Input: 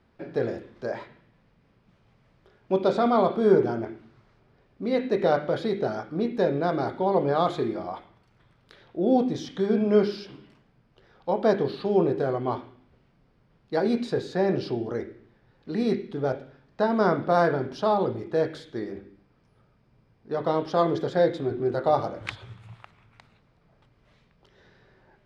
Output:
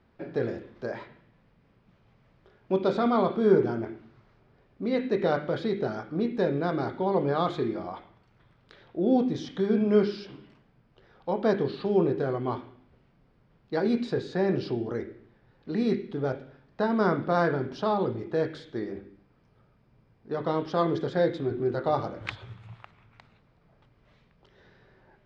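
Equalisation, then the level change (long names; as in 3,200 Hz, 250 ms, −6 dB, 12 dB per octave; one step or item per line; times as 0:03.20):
dynamic equaliser 670 Hz, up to −5 dB, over −36 dBFS, Q 1.4
high-frequency loss of the air 76 metres
0.0 dB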